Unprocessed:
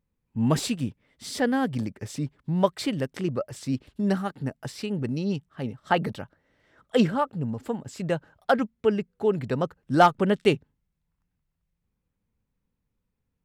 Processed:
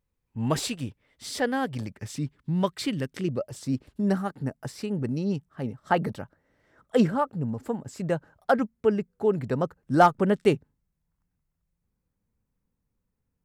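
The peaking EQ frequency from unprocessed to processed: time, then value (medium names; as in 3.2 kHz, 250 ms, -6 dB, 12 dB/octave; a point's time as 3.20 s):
peaking EQ -7 dB 1.1 oct
1.75 s 200 Hz
2.22 s 670 Hz
3.10 s 670 Hz
3.74 s 3.2 kHz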